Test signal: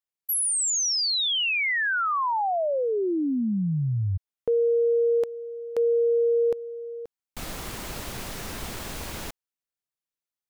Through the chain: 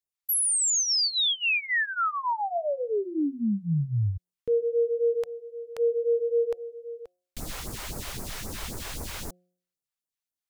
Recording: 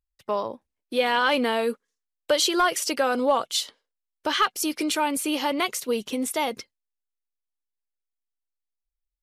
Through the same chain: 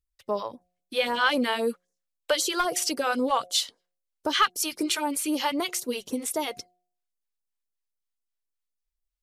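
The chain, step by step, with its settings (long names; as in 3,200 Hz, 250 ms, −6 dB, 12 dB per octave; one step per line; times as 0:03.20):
all-pass phaser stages 2, 3.8 Hz, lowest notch 170–3,000 Hz
hum removal 179.3 Hz, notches 4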